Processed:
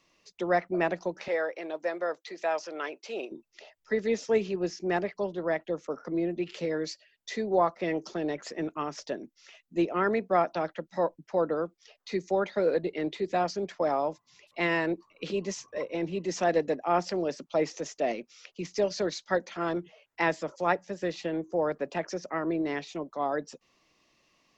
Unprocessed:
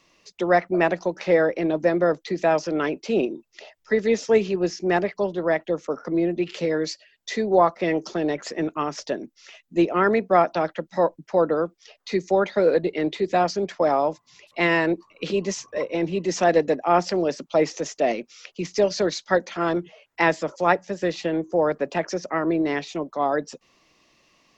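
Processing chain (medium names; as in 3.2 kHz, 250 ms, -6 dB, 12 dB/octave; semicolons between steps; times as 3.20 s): 1.28–3.32 s: high-pass 570 Hz 12 dB/octave; trim -7 dB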